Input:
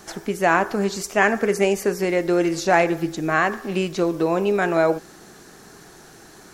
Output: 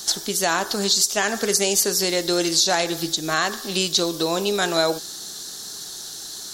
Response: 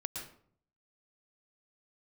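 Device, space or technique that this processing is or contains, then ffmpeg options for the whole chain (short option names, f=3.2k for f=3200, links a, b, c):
over-bright horn tweeter: -af "tiltshelf=f=1.4k:g=-5.5,highshelf=f=3k:t=q:w=3:g=8,alimiter=limit=-8.5dB:level=0:latency=1:release=160,volume=1.5dB"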